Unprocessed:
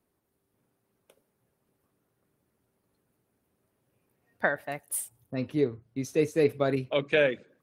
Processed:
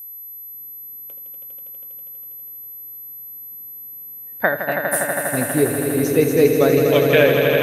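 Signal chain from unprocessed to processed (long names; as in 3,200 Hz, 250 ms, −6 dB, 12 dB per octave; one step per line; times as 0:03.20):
echo that builds up and dies away 81 ms, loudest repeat 5, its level −7 dB
steady tone 12,000 Hz −41 dBFS
level +8 dB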